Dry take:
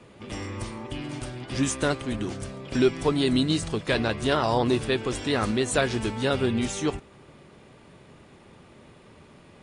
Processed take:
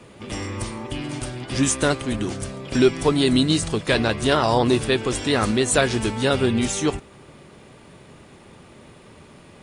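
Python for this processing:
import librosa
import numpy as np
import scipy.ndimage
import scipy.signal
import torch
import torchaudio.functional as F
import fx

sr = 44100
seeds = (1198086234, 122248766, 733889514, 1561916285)

y = fx.high_shelf(x, sr, hz=8300.0, db=8.0)
y = y * librosa.db_to_amplitude(4.5)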